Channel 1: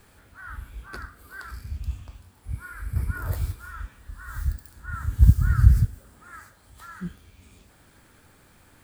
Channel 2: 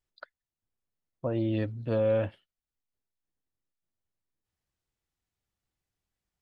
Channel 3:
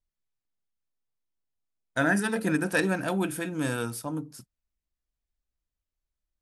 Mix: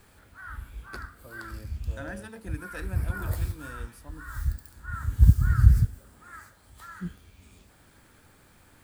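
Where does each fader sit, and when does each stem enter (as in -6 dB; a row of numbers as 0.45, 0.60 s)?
-1.5, -19.5, -15.5 dB; 0.00, 0.00, 0.00 s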